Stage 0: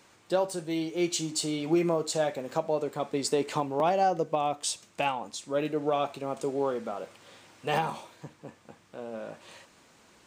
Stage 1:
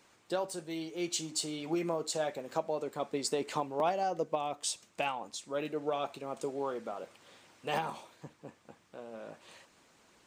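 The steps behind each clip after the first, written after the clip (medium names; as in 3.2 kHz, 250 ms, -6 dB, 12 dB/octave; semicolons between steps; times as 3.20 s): peaking EQ 84 Hz -2 dB 2 oct; harmonic-percussive split harmonic -5 dB; trim -3 dB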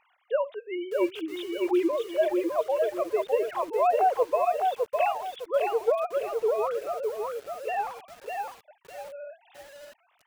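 formants replaced by sine waves; bit-crushed delay 607 ms, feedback 35%, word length 9-bit, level -3 dB; trim +7 dB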